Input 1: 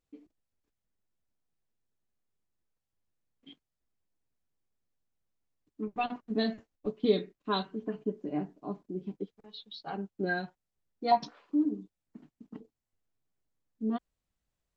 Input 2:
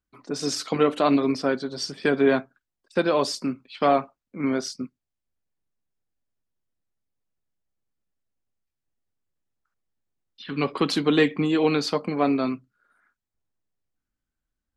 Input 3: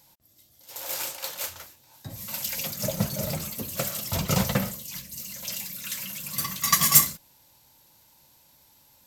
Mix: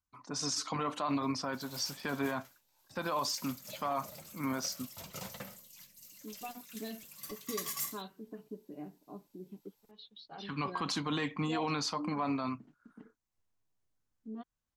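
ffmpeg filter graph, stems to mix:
-filter_complex "[0:a]acompressor=threshold=0.00112:ratio=1.5,adelay=450,volume=0.841[s0];[1:a]equalizer=f=100:t=o:w=0.67:g=9,equalizer=f=400:t=o:w=0.67:g=-9,equalizer=f=1000:t=o:w=0.67:g=11,equalizer=f=6300:t=o:w=0.67:g=9,volume=0.376[s1];[2:a]lowshelf=f=220:g=-11,adelay=850,volume=0.141[s2];[s0][s1][s2]amix=inputs=3:normalize=0,alimiter=level_in=1.06:limit=0.0631:level=0:latency=1:release=33,volume=0.944"

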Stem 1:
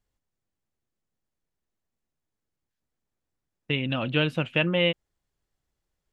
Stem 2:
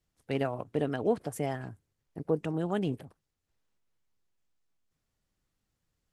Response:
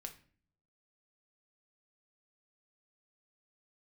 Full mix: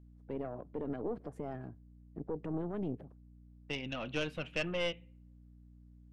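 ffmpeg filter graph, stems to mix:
-filter_complex "[0:a]highpass=f=260:p=1,highshelf=f=2500:g=-3.5,aeval=exprs='val(0)+0.00447*(sin(2*PI*60*n/s)+sin(2*PI*2*60*n/s)/2+sin(2*PI*3*60*n/s)/3+sin(2*PI*4*60*n/s)/4+sin(2*PI*5*60*n/s)/5)':c=same,volume=0.473,asplit=2[s0][s1];[s1]volume=0.473[s2];[1:a]alimiter=level_in=1.12:limit=0.0631:level=0:latency=1:release=66,volume=0.891,bandpass=f=310:t=q:w=0.6:csg=0,volume=1.26,asplit=2[s3][s4];[s4]volume=0.126[s5];[2:a]atrim=start_sample=2205[s6];[s2][s5]amix=inputs=2:normalize=0[s7];[s7][s6]afir=irnorm=-1:irlink=0[s8];[s0][s3][s8]amix=inputs=3:normalize=0,aeval=exprs='(tanh(14.1*val(0)+0.7)-tanh(0.7))/14.1':c=same"

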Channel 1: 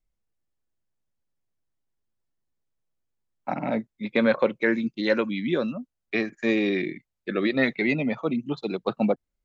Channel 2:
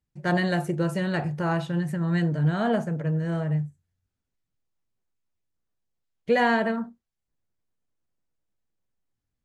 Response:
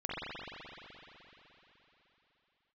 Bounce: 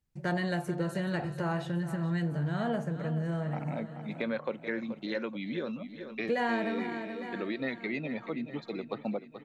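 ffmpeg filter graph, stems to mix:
-filter_complex "[0:a]adelay=50,volume=0.473,asplit=2[s0][s1];[s1]volume=0.211[s2];[1:a]bandreject=f=152:t=h:w=4,bandreject=f=304:t=h:w=4,bandreject=f=456:t=h:w=4,bandreject=f=608:t=h:w=4,bandreject=f=760:t=h:w=4,bandreject=f=912:t=h:w=4,bandreject=f=1064:t=h:w=4,bandreject=f=1216:t=h:w=4,bandreject=f=1368:t=h:w=4,bandreject=f=1520:t=h:w=4,bandreject=f=1672:t=h:w=4,bandreject=f=1824:t=h:w=4,bandreject=f=1976:t=h:w=4,bandreject=f=2128:t=h:w=4,bandreject=f=2280:t=h:w=4,bandreject=f=2432:t=h:w=4,bandreject=f=2584:t=h:w=4,bandreject=f=2736:t=h:w=4,bandreject=f=2888:t=h:w=4,bandreject=f=3040:t=h:w=4,bandreject=f=3192:t=h:w=4,bandreject=f=3344:t=h:w=4,bandreject=f=3496:t=h:w=4,bandreject=f=3648:t=h:w=4,bandreject=f=3800:t=h:w=4,bandreject=f=3952:t=h:w=4,bandreject=f=4104:t=h:w=4,bandreject=f=4256:t=h:w=4,bandreject=f=4408:t=h:w=4,bandreject=f=4560:t=h:w=4,bandreject=f=4712:t=h:w=4,bandreject=f=4864:t=h:w=4,bandreject=f=5016:t=h:w=4,bandreject=f=5168:t=h:w=4,bandreject=f=5320:t=h:w=4,bandreject=f=5472:t=h:w=4,bandreject=f=5624:t=h:w=4,bandreject=f=5776:t=h:w=4,bandreject=f=5928:t=h:w=4,volume=1.06,asplit=2[s3][s4];[s4]volume=0.2[s5];[s2][s5]amix=inputs=2:normalize=0,aecho=0:1:429|858|1287|1716|2145|2574|3003:1|0.48|0.23|0.111|0.0531|0.0255|0.0122[s6];[s0][s3][s6]amix=inputs=3:normalize=0,acompressor=threshold=0.02:ratio=2"

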